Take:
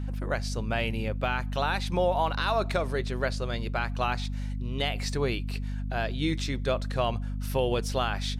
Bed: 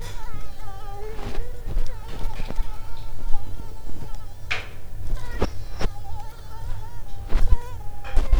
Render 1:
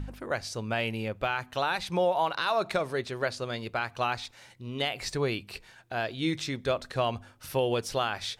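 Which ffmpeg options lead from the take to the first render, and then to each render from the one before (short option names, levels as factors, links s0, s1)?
-af "bandreject=f=50:t=h:w=4,bandreject=f=100:t=h:w=4,bandreject=f=150:t=h:w=4,bandreject=f=200:t=h:w=4,bandreject=f=250:t=h:w=4"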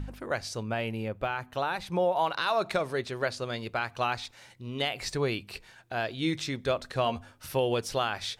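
-filter_complex "[0:a]asettb=1/sr,asplit=3[s0][s1][s2];[s0]atrim=end=0.634[s3];[s1]atrim=start=0.63:end=2.16,asetpts=PTS-STARTPTS,afade=t=in:d=0.004:c=qsin,afade=t=out:st=1.526:d=0.004:c=qsin,equalizer=f=5000:w=0.36:g=-6.5[s4];[s2]atrim=start=2.156[s5];[s3][s4]acrossfade=d=0.004:c1=hsin:c2=qsin[s6];[s6][s5]acrossfade=d=0.004:c1=qsin:c2=hsin,asettb=1/sr,asplit=3[s7][s8][s9];[s7]atrim=end=7.044[s10];[s8]atrim=start=7.04:end=7.47,asetpts=PTS-STARTPTS,afade=t=in:d=0.004:c=qsin,afade=t=out:st=0.426:d=0.004:c=qsin,asplit=2[s11][s12];[s12]adelay=13,volume=0.447[s13];[s11][s13]amix=inputs=2:normalize=0,atrim=end_sample=18963[s14];[s9]atrim=start=7.466[s15];[s10][s14]acrossfade=d=0.004:c1=hsin:c2=qsin[s16];[s16][s15]acrossfade=d=0.004:c1=qsin:c2=hsin"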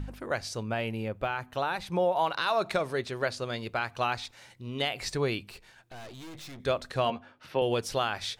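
-filter_complex "[0:a]asettb=1/sr,asplit=3[s0][s1][s2];[s0]atrim=end=5.504[s3];[s1]atrim=start=5.5:end=6.6,asetpts=PTS-STARTPTS,afade=t=in:d=0.004:c=qsin,afade=t=out:st=1.096:d=0.004:c=qsin,aeval=exprs='(tanh(141*val(0)+0.55)-tanh(0.55))/141':c=same[s4];[s2]atrim=start=6.596[s5];[s3][s4]acrossfade=d=0.004:c1=hsin:c2=qsin[s6];[s6][s5]acrossfade=d=0.004:c1=qsin:c2=hsin,asettb=1/sr,asplit=3[s7][s8][s9];[s7]atrim=end=7.104[s10];[s8]atrim=start=7.1:end=7.62,asetpts=PTS-STARTPTS,afade=t=in:d=0.004:c=qsin,afade=t=out:st=0.516:d=0.004:c=qsin,acrossover=split=150 4200:gain=0.126 1 0.0708[s11][s12][s13];[s11][s12][s13]amix=inputs=3:normalize=0[s14];[s9]atrim=start=7.616[s15];[s10][s14]acrossfade=d=0.004:c1=hsin:c2=qsin[s16];[s16][s15]acrossfade=d=0.004:c1=qsin:c2=hsin"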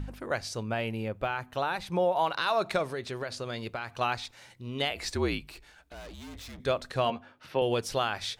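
-filter_complex "[0:a]asettb=1/sr,asplit=3[s0][s1][s2];[s0]atrim=end=2.844[s3];[s1]atrim=start=2.84:end=4.01,asetpts=PTS-STARTPTS,afade=t=in:d=0.004:c=qsin,afade=t=out:st=1.166:d=0.004:c=qsin,acompressor=threshold=0.0316:ratio=6:attack=3.2:release=140:knee=1:detection=peak[s4];[s2]atrim=start=4.006[s5];[s3][s4]acrossfade=d=0.004:c1=hsin:c2=qsin[s6];[s6][s5]acrossfade=d=0.004:c1=qsin:c2=hsin,asettb=1/sr,asplit=3[s7][s8][s9];[s7]atrim=end=4.904[s10];[s8]atrim=start=4.9:end=6.6,asetpts=PTS-STARTPTS,afade=t=in:d=0.004:c=qsin,afade=t=out:st=1.696:d=0.004:c=qsin,afreqshift=-53[s11];[s9]atrim=start=6.596[s12];[s10][s11]acrossfade=d=0.004:c1=hsin:c2=qsin[s13];[s13][s12]acrossfade=d=0.004:c1=qsin:c2=hsin"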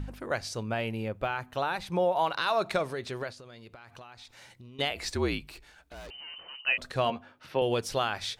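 -filter_complex "[0:a]asettb=1/sr,asplit=3[s0][s1][s2];[s0]atrim=end=3.304[s3];[s1]atrim=start=3.3:end=4.79,asetpts=PTS-STARTPTS,afade=t=in:d=0.004:c=qsin,afade=t=out:st=1.486:d=0.004:c=qsin,acompressor=threshold=0.00562:ratio=8:attack=3.2:release=140:knee=1:detection=peak[s4];[s2]atrim=start=4.786[s5];[s3][s4]acrossfade=d=0.004:c1=hsin:c2=qsin[s6];[s6][s5]acrossfade=d=0.004:c1=qsin:c2=hsin,asettb=1/sr,asplit=3[s7][s8][s9];[s7]atrim=end=6.104[s10];[s8]atrim=start=6.1:end=6.78,asetpts=PTS-STARTPTS,afade=t=in:d=0.004:c=qsin,afade=t=out:st=0.676:d=0.004:c=qsin,lowpass=f=2600:t=q:w=0.5098,lowpass=f=2600:t=q:w=0.6013,lowpass=f=2600:t=q:w=0.9,lowpass=f=2600:t=q:w=2.563,afreqshift=-3100[s11];[s9]atrim=start=6.776[s12];[s10][s11]acrossfade=d=0.004:c1=hsin:c2=qsin[s13];[s13][s12]acrossfade=d=0.004:c1=qsin:c2=hsin"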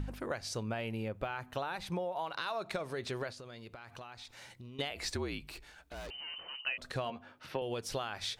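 -af "acompressor=threshold=0.0224:ratio=12"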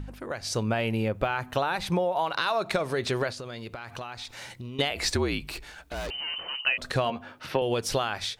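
-af "dynaudnorm=f=290:g=3:m=3.35"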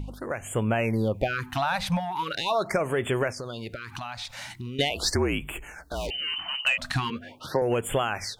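-af "aeval=exprs='0.282*(cos(1*acos(clip(val(0)/0.282,-1,1)))-cos(1*PI/2))+0.0224*(cos(5*acos(clip(val(0)/0.282,-1,1)))-cos(5*PI/2))':c=same,afftfilt=real='re*(1-between(b*sr/1024,350*pow(5000/350,0.5+0.5*sin(2*PI*0.41*pts/sr))/1.41,350*pow(5000/350,0.5+0.5*sin(2*PI*0.41*pts/sr))*1.41))':imag='im*(1-between(b*sr/1024,350*pow(5000/350,0.5+0.5*sin(2*PI*0.41*pts/sr))/1.41,350*pow(5000/350,0.5+0.5*sin(2*PI*0.41*pts/sr))*1.41))':win_size=1024:overlap=0.75"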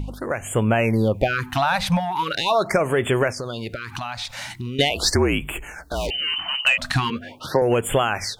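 -af "volume=2"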